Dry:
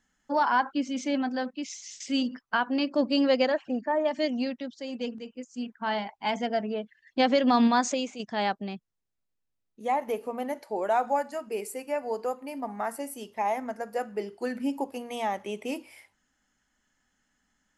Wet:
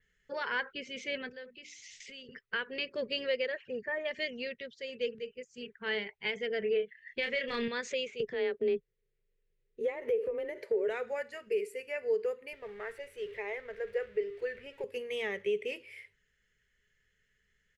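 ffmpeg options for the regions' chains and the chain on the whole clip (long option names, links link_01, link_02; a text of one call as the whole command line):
ffmpeg -i in.wav -filter_complex "[0:a]asettb=1/sr,asplit=3[link_01][link_02][link_03];[link_01]atrim=end=1.294[link_04];[link_02]atrim=start=1.29:end=2.29,asetpts=PTS-STARTPTS,afade=type=in:duration=0.004:curve=qsin,afade=type=out:start_time=0.996:duration=0.004:curve=qsin,bandreject=frequency=60:width_type=h:width=6,bandreject=frequency=120:width_type=h:width=6,bandreject=frequency=180:width_type=h:width=6,bandreject=frequency=240:width_type=h:width=6,bandreject=frequency=300:width_type=h:width=6,bandreject=frequency=360:width_type=h:width=6,acompressor=threshold=-40dB:ratio=4:attack=3.2:release=140:knee=1:detection=peak[link_05];[link_03]atrim=start=2.286[link_06];[link_04][link_05]acrossfade=duration=0.004:curve1=hsin:curve2=qsin[link_07];[link_07][link_06]acrossfade=duration=0.004:curve1=qsin:curve2=hsin,asettb=1/sr,asplit=3[link_08][link_09][link_10];[link_08]atrim=end=6.594[link_11];[link_09]atrim=start=6.59:end=7.68,asetpts=PTS-STARTPTS,afade=type=in:duration=0.004:curve=qsin,afade=type=out:start_time=1.086:duration=0.004:curve=qsin,equalizer=frequency=2100:width_type=o:width=0.65:gain=5.5,aeval=exprs='clip(val(0),-1,0.141)':channel_layout=same,asplit=2[link_12][link_13];[link_13]adelay=30,volume=-6dB[link_14];[link_12][link_14]amix=inputs=2:normalize=0,atrim=end_sample=48069[link_15];[link_10]atrim=start=7.676[link_16];[link_11][link_15]acrossfade=duration=0.004:curve1=hsin:curve2=qsin[link_17];[link_17][link_16]acrossfade=duration=0.004:curve1=qsin:curve2=hsin,asettb=1/sr,asplit=3[link_18][link_19][link_20];[link_18]atrim=end=8.204[link_21];[link_19]atrim=start=8.2:end=10.88,asetpts=PTS-STARTPTS,afade=type=in:duration=0.004:curve=qsin,afade=type=out:start_time=2.676:duration=0.004:curve=qsin,equalizer=frequency=370:width_type=o:width=2.8:gain=12.5,acompressor=threshold=-25dB:ratio=6:attack=3.2:release=140:knee=1:detection=peak,afreqshift=24[link_22];[link_20]atrim=start=10.876[link_23];[link_21][link_22]acrossfade=duration=0.004:curve1=hsin:curve2=qsin[link_24];[link_24][link_23]acrossfade=duration=0.004:curve1=qsin:curve2=hsin,asettb=1/sr,asplit=3[link_25][link_26][link_27];[link_25]atrim=end=12.534[link_28];[link_26]atrim=start=12.53:end=14.84,asetpts=PTS-STARTPTS,afade=type=in:duration=0.004:curve=qsin,afade=type=out:start_time=2.306:duration=0.004:curve=qsin,aeval=exprs='val(0)+0.5*0.00668*sgn(val(0))':channel_layout=same,lowpass=frequency=1800:poles=1,equalizer=frequency=230:width=1.6:gain=-14.5[link_29];[link_27]atrim=start=14.836[link_30];[link_28][link_29]acrossfade=duration=0.004:curve1=hsin:curve2=qsin[link_31];[link_31][link_30]acrossfade=duration=0.004:curve1=qsin:curve2=hsin,firequalizer=gain_entry='entry(140,0);entry(290,-26);entry(410,6);entry(730,-25);entry(1900,2);entry(5200,-11);entry(11000,-14)':delay=0.05:min_phase=1,alimiter=level_in=1.5dB:limit=-24dB:level=0:latency=1:release=415,volume=-1.5dB,adynamicequalizer=threshold=0.00178:dfrequency=5300:dqfactor=0.7:tfrequency=5300:tqfactor=0.7:attack=5:release=100:ratio=0.375:range=2.5:mode=cutabove:tftype=highshelf,volume=3dB" out.wav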